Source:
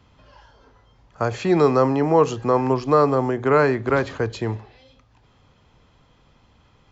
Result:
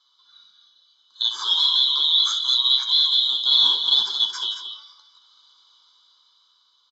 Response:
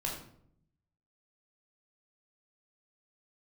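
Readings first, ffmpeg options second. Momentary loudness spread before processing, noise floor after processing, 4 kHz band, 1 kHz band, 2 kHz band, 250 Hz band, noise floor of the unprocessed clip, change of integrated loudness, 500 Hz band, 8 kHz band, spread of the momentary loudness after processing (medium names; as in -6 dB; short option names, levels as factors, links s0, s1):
10 LU, -63 dBFS, +27.5 dB, -15.0 dB, under -15 dB, under -30 dB, -58 dBFS, +2.5 dB, under -35 dB, no reading, 10 LU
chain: -filter_complex "[0:a]afftfilt=real='real(if(lt(b,272),68*(eq(floor(b/68),0)*1+eq(floor(b/68),1)*3+eq(floor(b/68),2)*0+eq(floor(b/68),3)*2)+mod(b,68),b),0)':imag='imag(if(lt(b,272),68*(eq(floor(b/68),0)*1+eq(floor(b/68),1)*3+eq(floor(b/68),2)*0+eq(floor(b/68),3)*2)+mod(b,68),b),0)':win_size=2048:overlap=0.75,highpass=1000,equalizer=f=2400:w=3.3:g=-14.5,aecho=1:1:0.8:0.83,alimiter=limit=0.224:level=0:latency=1:release=28,dynaudnorm=f=230:g=11:m=2.51,asoftclip=type=hard:threshold=0.398,flanger=delay=7.8:depth=5.8:regen=-32:speed=0.73:shape=sinusoidal,asuperstop=centerf=2700:order=12:qfactor=4.4,asplit=2[s0][s1];[s1]aecho=0:1:63|176|224:0.282|0.188|0.335[s2];[s0][s2]amix=inputs=2:normalize=0,aresample=16000,aresample=44100"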